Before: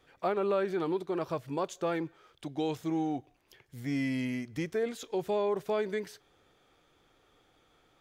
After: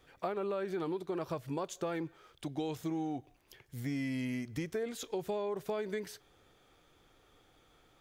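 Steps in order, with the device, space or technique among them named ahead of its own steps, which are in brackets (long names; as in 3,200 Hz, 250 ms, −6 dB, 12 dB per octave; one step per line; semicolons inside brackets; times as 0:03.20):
ASMR close-microphone chain (low-shelf EQ 110 Hz +5.5 dB; downward compressor 5 to 1, threshold −33 dBFS, peak gain reduction 8 dB; high-shelf EQ 7,900 Hz +5.5 dB)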